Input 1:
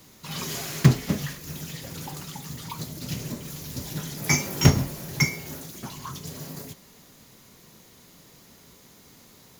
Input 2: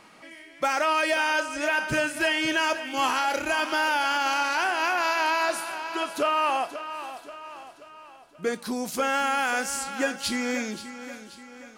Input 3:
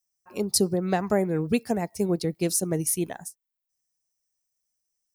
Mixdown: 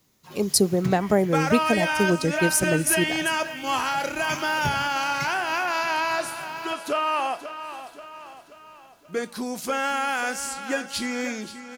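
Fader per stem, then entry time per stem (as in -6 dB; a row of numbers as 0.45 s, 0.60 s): -13.5 dB, -0.5 dB, +3.0 dB; 0.00 s, 0.70 s, 0.00 s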